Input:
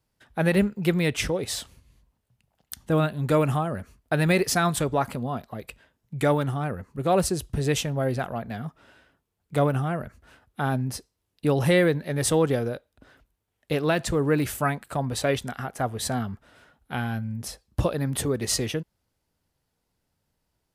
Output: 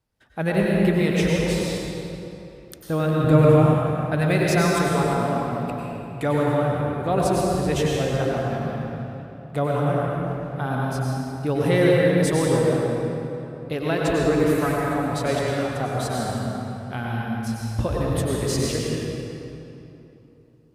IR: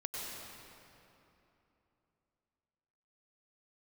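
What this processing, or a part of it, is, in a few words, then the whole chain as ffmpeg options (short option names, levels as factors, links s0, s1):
swimming-pool hall: -filter_complex "[1:a]atrim=start_sample=2205[s0];[0:a][s0]afir=irnorm=-1:irlink=0,highshelf=f=4600:g=-5,asettb=1/sr,asplit=3[s1][s2][s3];[s1]atrim=end=3.244[s4];[s2]atrim=start=3.24:end=3.74,asetpts=PTS-STARTPTS,afade=t=in:d=0.004:c=qsin,afade=t=out:st=0.496:d=0.004:c=qsin,lowshelf=f=330:g=8.5[s5];[s3]atrim=start=3.736[s6];[s4][s5]acrossfade=d=0.004:c1=hsin:c2=qsin[s7];[s7][s6]acrossfade=d=0.004:c1=qsin:c2=hsin,volume=1.19"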